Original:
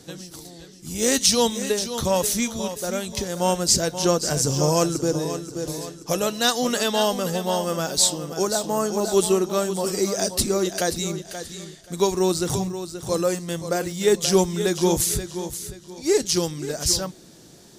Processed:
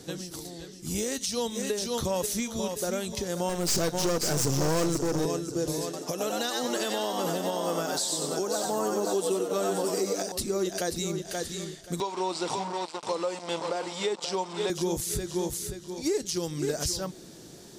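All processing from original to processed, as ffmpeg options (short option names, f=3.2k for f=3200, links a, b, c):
-filter_complex "[0:a]asettb=1/sr,asplit=3[a][b][c];[a]atrim=end=3.494[d];[b]atrim=start=3.49:end=5.26,asetpts=PTS-STARTPTS,afade=t=in:d=0.004:c=qsin,afade=t=out:st=1.766:d=0.004:c=qsin,acontrast=84,aeval=exprs='(tanh(8.91*val(0)+0.75)-tanh(0.75))/8.91':c=same[e];[c]atrim=start=5.256[f];[d][e]acrossfade=d=0.004:c1=hsin:c2=qsin[g];[g][f]acrossfade=d=0.004:c1=qsin:c2=hsin,asettb=1/sr,asplit=3[h][i][j];[h]atrim=end=5.844[k];[i]atrim=start=5.84:end=10.32,asetpts=PTS-STARTPTS,afade=t=in:d=0.004:c=qsin,afade=t=out:st=4.476:d=0.004:c=qsin,highpass=150,asplit=6[l][m][n][o][p][q];[m]adelay=93,afreqshift=100,volume=-4dB[r];[n]adelay=186,afreqshift=200,volume=-12.6dB[s];[o]adelay=279,afreqshift=300,volume=-21.3dB[t];[p]adelay=372,afreqshift=400,volume=-29.9dB[u];[q]adelay=465,afreqshift=500,volume=-38.5dB[v];[l][r][s][t][u][v]amix=inputs=6:normalize=0,atrim=end_sample=197568[w];[j]atrim=start=10.316[x];[k][w]acrossfade=d=0.004:c1=hsin:c2=qsin[y];[y][x]acrossfade=d=0.004:c1=qsin:c2=hsin,asettb=1/sr,asplit=3[z][aa][ab];[z]atrim=end=12.004[ac];[aa]atrim=start=12:end=14.7,asetpts=PTS-STARTPTS,afade=t=in:d=0.004:c=qsin,afade=t=out:st=2.696:d=0.004:c=qsin,acrusher=bits=4:mix=0:aa=0.5,highpass=350,equalizer=f=380:t=q:w=4:g=-6,equalizer=f=930:t=q:w=4:g=9,equalizer=f=1.7k:t=q:w=4:g=-6,equalizer=f=6.4k:t=q:w=4:g=-9,lowpass=f=7.2k:w=0.5412,lowpass=f=7.2k:w=1.3066[ad];[ab]atrim=start=14.696[ae];[ac][ad]acrossfade=d=0.004:c1=hsin:c2=qsin[af];[af][ae]acrossfade=d=0.004:c1=qsin:c2=hsin,equalizer=f=390:t=o:w=0.76:g=3,acompressor=threshold=-23dB:ratio=3,alimiter=limit=-18.5dB:level=0:latency=1:release=281"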